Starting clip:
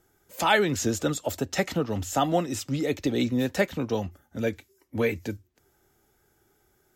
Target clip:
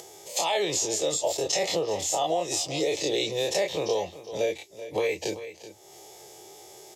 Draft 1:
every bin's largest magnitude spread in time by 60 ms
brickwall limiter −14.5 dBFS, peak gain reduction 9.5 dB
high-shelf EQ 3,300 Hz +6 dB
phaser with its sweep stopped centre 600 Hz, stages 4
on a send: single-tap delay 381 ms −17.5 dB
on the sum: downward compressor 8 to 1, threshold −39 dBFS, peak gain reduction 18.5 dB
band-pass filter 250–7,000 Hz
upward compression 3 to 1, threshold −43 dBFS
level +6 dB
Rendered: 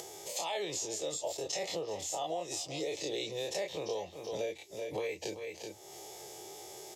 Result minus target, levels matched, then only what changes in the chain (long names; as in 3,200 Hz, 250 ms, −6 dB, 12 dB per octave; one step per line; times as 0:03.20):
downward compressor: peak gain reduction +10 dB
change: downward compressor 8 to 1, threshold −27.5 dBFS, peak gain reduction 8.5 dB